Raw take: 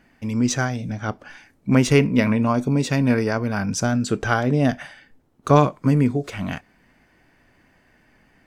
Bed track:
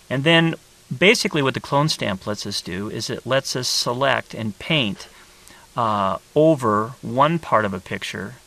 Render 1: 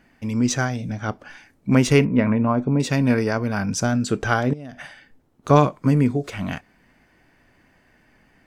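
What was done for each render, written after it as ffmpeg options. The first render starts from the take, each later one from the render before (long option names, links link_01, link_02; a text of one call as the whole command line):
ffmpeg -i in.wav -filter_complex "[0:a]asettb=1/sr,asplit=3[link_01][link_02][link_03];[link_01]atrim=end=2.054[link_04];[link_02]atrim=start=2.05:end=2.8,asetpts=PTS-STARTPTS,afade=type=in:duration=0.004:curve=qsin,afade=type=out:start_time=0.746:duration=0.004:curve=qsin,lowpass=1800[link_05];[link_03]atrim=start=2.796[link_06];[link_04][link_05]acrossfade=duration=0.004:curve1=hsin:curve2=qsin[link_07];[link_07][link_06]acrossfade=duration=0.004:curve1=qsin:curve2=hsin,asettb=1/sr,asplit=3[link_08][link_09][link_10];[link_08]atrim=end=4.534[link_11];[link_09]atrim=start=4.53:end=5.48,asetpts=PTS-STARTPTS,afade=type=in:duration=0.004:curve=qsin,afade=type=out:start_time=0.946:duration=0.004:curve=qsin,acompressor=threshold=-31dB:ratio=20:attack=3.2:release=140:knee=1:detection=peak[link_12];[link_10]atrim=start=5.476[link_13];[link_11][link_12]acrossfade=duration=0.004:curve1=hsin:curve2=qsin[link_14];[link_14][link_13]acrossfade=duration=0.004:curve1=qsin:curve2=hsin" out.wav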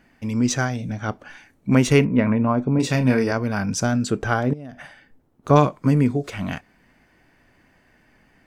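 ffmpeg -i in.wav -filter_complex "[0:a]asettb=1/sr,asplit=3[link_01][link_02][link_03];[link_01]atrim=end=0.734[link_04];[link_02]atrim=start=0.73:end=2.24,asetpts=PTS-STARTPTS,afade=type=in:duration=0.004:curve=qsin,afade=type=out:start_time=1.506:duration=0.004:curve=qsin,bandreject=frequency=5000:width=12[link_05];[link_03]atrim=start=2.236[link_06];[link_04][link_05]acrossfade=duration=0.004:curve1=hsin:curve2=qsin[link_07];[link_07][link_06]acrossfade=duration=0.004:curve1=qsin:curve2=hsin,asettb=1/sr,asplit=3[link_08][link_09][link_10];[link_08]atrim=end=2.754[link_11];[link_09]atrim=start=2.75:end=3.32,asetpts=PTS-STARTPTS,afade=type=in:duration=0.004:curve=qsin,afade=type=out:start_time=0.566:duration=0.004:curve=qsin,asplit=2[link_12][link_13];[link_13]adelay=31,volume=-7dB[link_14];[link_12][link_14]amix=inputs=2:normalize=0,atrim=end_sample=25137[link_15];[link_10]atrim=start=3.316[link_16];[link_11][link_15]acrossfade=duration=0.004:curve1=hsin:curve2=qsin[link_17];[link_17][link_16]acrossfade=duration=0.004:curve1=qsin:curve2=hsin,asettb=1/sr,asplit=3[link_18][link_19][link_20];[link_18]atrim=end=4.104[link_21];[link_19]atrim=start=4.1:end=5.56,asetpts=PTS-STARTPTS,afade=type=in:duration=0.004:curve=qsin,afade=type=out:start_time=1.456:duration=0.004:curve=qsin,equalizer=frequency=5000:width=0.39:gain=-5.5[link_22];[link_20]atrim=start=5.556[link_23];[link_21][link_22]acrossfade=duration=0.004:curve1=hsin:curve2=qsin[link_24];[link_24][link_23]acrossfade=duration=0.004:curve1=qsin:curve2=hsin" out.wav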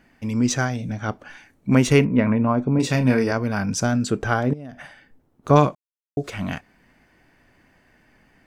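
ffmpeg -i in.wav -filter_complex "[0:a]asplit=3[link_01][link_02][link_03];[link_01]atrim=end=5.75,asetpts=PTS-STARTPTS,afade=type=out:start_time=5.746:duration=0.004:curve=hsin[link_04];[link_02]atrim=start=5.75:end=6.17,asetpts=PTS-STARTPTS,volume=0[link_05];[link_03]atrim=start=6.17,asetpts=PTS-STARTPTS,afade=type=in:duration=0.004:curve=hsin[link_06];[link_04][link_05][link_06]concat=n=3:v=0:a=1" out.wav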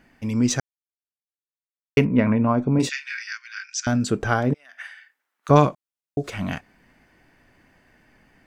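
ffmpeg -i in.wav -filter_complex "[0:a]asettb=1/sr,asplit=3[link_01][link_02][link_03];[link_01]atrim=end=2.894[link_04];[link_02]atrim=start=2.89:end=3.87,asetpts=PTS-STARTPTS,afade=type=in:duration=0.004:curve=qsin,afade=type=out:start_time=0.976:duration=0.004:curve=qsin,asuperpass=centerf=3500:order=12:qfactor=0.6[link_05];[link_03]atrim=start=3.866[link_06];[link_04][link_05]acrossfade=duration=0.004:curve1=hsin:curve2=qsin[link_07];[link_07][link_06]acrossfade=duration=0.004:curve1=qsin:curve2=hsin,asettb=1/sr,asplit=3[link_08][link_09][link_10];[link_08]atrim=end=4.544[link_11];[link_09]atrim=start=4.54:end=5.49,asetpts=PTS-STARTPTS,afade=type=in:duration=0.004:curve=qsin,afade=type=out:start_time=0.946:duration=0.004:curve=qsin,highpass=frequency=1700:width_type=q:width=1.8[link_12];[link_10]atrim=start=5.486[link_13];[link_11][link_12]acrossfade=duration=0.004:curve1=hsin:curve2=qsin[link_14];[link_14][link_13]acrossfade=duration=0.004:curve1=qsin:curve2=hsin,asplit=3[link_15][link_16][link_17];[link_15]atrim=end=0.6,asetpts=PTS-STARTPTS,afade=type=out:start_time=0.596:duration=0.004:curve=hsin[link_18];[link_16]atrim=start=0.6:end=1.97,asetpts=PTS-STARTPTS,volume=0[link_19];[link_17]atrim=start=1.97,asetpts=PTS-STARTPTS,afade=type=in:duration=0.004:curve=hsin[link_20];[link_18][link_19][link_20]concat=n=3:v=0:a=1" out.wav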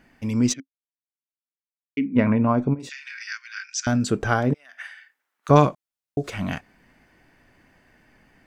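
ffmpeg -i in.wav -filter_complex "[0:a]asplit=3[link_01][link_02][link_03];[link_01]afade=type=out:start_time=0.52:duration=0.02[link_04];[link_02]asplit=3[link_05][link_06][link_07];[link_05]bandpass=frequency=270:width_type=q:width=8,volume=0dB[link_08];[link_06]bandpass=frequency=2290:width_type=q:width=8,volume=-6dB[link_09];[link_07]bandpass=frequency=3010:width_type=q:width=8,volume=-9dB[link_10];[link_08][link_09][link_10]amix=inputs=3:normalize=0,afade=type=in:start_time=0.52:duration=0.02,afade=type=out:start_time=2.15:duration=0.02[link_11];[link_03]afade=type=in:start_time=2.15:duration=0.02[link_12];[link_04][link_11][link_12]amix=inputs=3:normalize=0,asplit=3[link_13][link_14][link_15];[link_13]afade=type=out:start_time=2.73:duration=0.02[link_16];[link_14]acompressor=threshold=-33dB:ratio=8:attack=3.2:release=140:knee=1:detection=peak,afade=type=in:start_time=2.73:duration=0.02,afade=type=out:start_time=3.2:duration=0.02[link_17];[link_15]afade=type=in:start_time=3.2:duration=0.02[link_18];[link_16][link_17][link_18]amix=inputs=3:normalize=0" out.wav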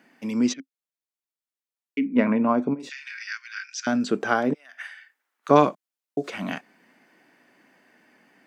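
ffmpeg -i in.wav -filter_complex "[0:a]acrossover=split=5600[link_01][link_02];[link_02]acompressor=threshold=-52dB:ratio=4:attack=1:release=60[link_03];[link_01][link_03]amix=inputs=2:normalize=0,highpass=frequency=200:width=0.5412,highpass=frequency=200:width=1.3066" out.wav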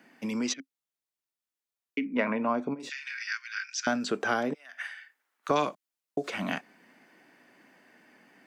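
ffmpeg -i in.wav -filter_complex "[0:a]acrossover=split=510|2200[link_01][link_02][link_03];[link_01]acompressor=threshold=-31dB:ratio=6[link_04];[link_02]alimiter=limit=-18dB:level=0:latency=1:release=319[link_05];[link_04][link_05][link_03]amix=inputs=3:normalize=0" out.wav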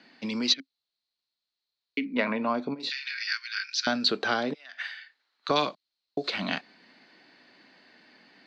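ffmpeg -i in.wav -af "lowpass=frequency=4200:width_type=q:width=8.9" out.wav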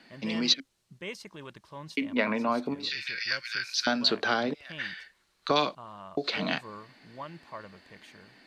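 ffmpeg -i in.wav -i bed.wav -filter_complex "[1:a]volume=-25dB[link_01];[0:a][link_01]amix=inputs=2:normalize=0" out.wav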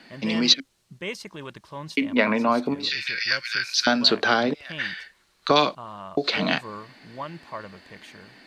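ffmpeg -i in.wav -af "volume=6.5dB" out.wav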